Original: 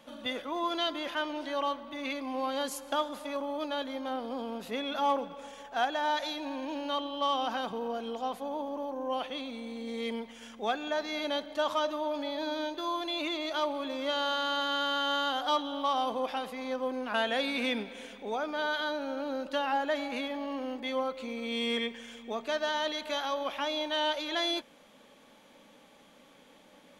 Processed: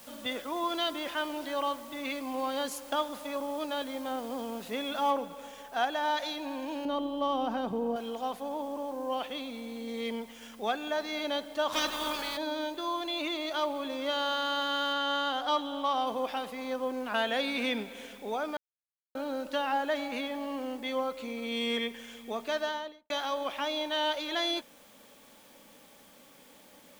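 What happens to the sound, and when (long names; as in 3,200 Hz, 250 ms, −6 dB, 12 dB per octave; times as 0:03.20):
0:01.53: noise floor change −59 dB −66 dB
0:05.10: noise floor change −54 dB −62 dB
0:06.85–0:07.96: tilt shelving filter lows +8 dB, about 760 Hz
0:11.72–0:12.36: ceiling on every frequency bin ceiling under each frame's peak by 24 dB
0:14.93–0:16.07: high-shelf EQ 7,900 Hz −7 dB
0:18.57–0:19.15: silence
0:22.57–0:23.10: fade out and dull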